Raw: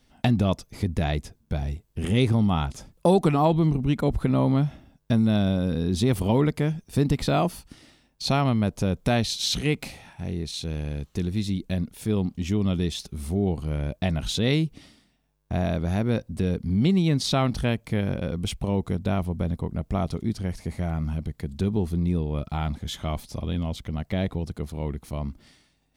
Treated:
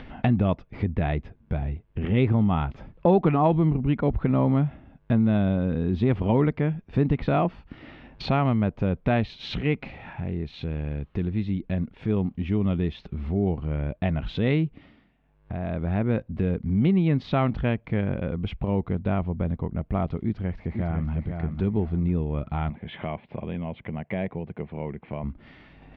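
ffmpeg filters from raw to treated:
ffmpeg -i in.wav -filter_complex "[0:a]asplit=2[link_01][link_02];[link_02]afade=type=in:start_time=20.24:duration=0.01,afade=type=out:start_time=21.12:duration=0.01,aecho=0:1:500|1000|1500|2000:0.501187|0.150356|0.0451069|0.0135321[link_03];[link_01][link_03]amix=inputs=2:normalize=0,asettb=1/sr,asplit=3[link_04][link_05][link_06];[link_04]atrim=end=22.704[link_07];[link_05]atrim=start=22.7:end=25.24,asetpts=PTS-STARTPTS,afade=type=in:duration=0.004:curve=qsin,afade=type=out:start_time=2.536:duration=0.004:curve=qsin,highpass=160,equalizer=frequency=280:width_type=q:width=4:gain=-7,equalizer=frequency=1300:width_type=q:width=4:gain=-8,equalizer=frequency=2300:width_type=q:width=4:gain=3,lowpass=frequency=3000:width=0.5412,lowpass=frequency=3000:width=1.3066[link_08];[link_06]atrim=start=25.236[link_09];[link_07][link_08]acrossfade=duration=0.004:curve1=hsin:curve2=qsin[link_10];[link_10][link_09]acrossfade=duration=0.004:curve1=qsin:curve2=hsin,asplit=3[link_11][link_12][link_13];[link_11]atrim=end=15.14,asetpts=PTS-STARTPTS,afade=type=out:start_time=14.66:duration=0.48:silence=0.188365[link_14];[link_12]atrim=start=15.14:end=15.44,asetpts=PTS-STARTPTS,volume=-14.5dB[link_15];[link_13]atrim=start=15.44,asetpts=PTS-STARTPTS,afade=type=in:duration=0.48:silence=0.188365[link_16];[link_14][link_15][link_16]concat=n=3:v=0:a=1,lowpass=frequency=2600:width=0.5412,lowpass=frequency=2600:width=1.3066,acompressor=mode=upward:threshold=-26dB:ratio=2.5" out.wav

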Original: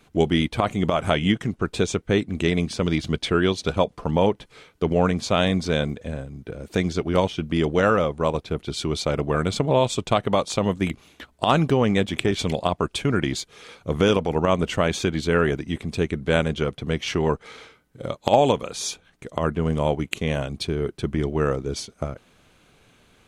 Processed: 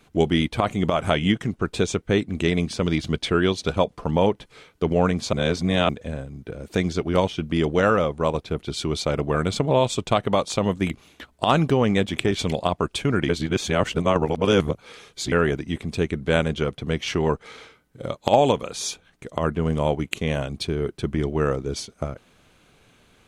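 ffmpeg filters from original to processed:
ffmpeg -i in.wav -filter_complex "[0:a]asplit=5[link_01][link_02][link_03][link_04][link_05];[link_01]atrim=end=5.332[link_06];[link_02]atrim=start=5.328:end=5.892,asetpts=PTS-STARTPTS,areverse[link_07];[link_03]atrim=start=5.888:end=13.292[link_08];[link_04]atrim=start=13.288:end=15.322,asetpts=PTS-STARTPTS,areverse[link_09];[link_05]atrim=start=15.318[link_10];[link_06][link_07]acrossfade=duration=0.004:curve1=hsin:curve2=hsin[link_11];[link_11][link_08]acrossfade=duration=0.004:curve1=hsin:curve2=hsin[link_12];[link_12][link_09]acrossfade=duration=0.004:curve1=hsin:curve2=hsin[link_13];[link_13][link_10]acrossfade=duration=0.004:curve1=hsin:curve2=hsin" out.wav

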